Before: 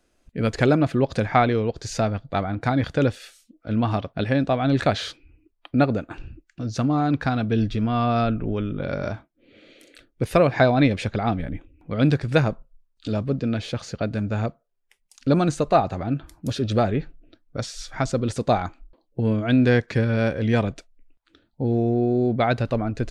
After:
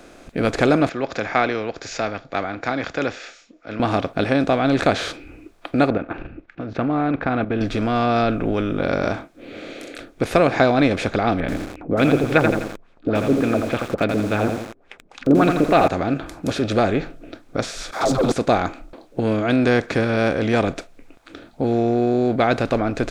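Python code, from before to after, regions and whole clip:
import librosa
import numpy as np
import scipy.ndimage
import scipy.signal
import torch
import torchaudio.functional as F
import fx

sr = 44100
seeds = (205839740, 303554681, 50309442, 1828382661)

y = fx.chain(x, sr, fx.cheby_ripple(hz=7200.0, ripple_db=6),
    fx.low_shelf(hz=290.0, db=-11.5),
    fx.band_widen(depth_pct=40), at=(0.89, 3.8))
y = fx.chain(y, sr, fx.level_steps(step_db=12),
    fx.lowpass(hz=2400.0, slope=24), at=(5.9, 7.61))
y = fx.chain(y, sr, fx.filter_lfo_lowpass(shape='sine', hz=3.5, low_hz=300.0, high_hz=3300.0, q=3.0),
    fx.echo_crushed(ms=84, feedback_pct=35, bits=7, wet_db=-8.0), at=(11.4, 15.88))
y = fx.chain(y, sr, fx.dispersion(late='lows', ms=130.0, hz=420.0),
    fx.leveller(passes=2),
    fx.band_shelf(hz=2100.0, db=-13.5, octaves=1.2), at=(17.91, 18.32))
y = fx.bin_compress(y, sr, power=0.6)
y = fx.peak_eq(y, sr, hz=130.0, db=-5.5, octaves=0.88)
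y = y * librosa.db_to_amplitude(-1.0)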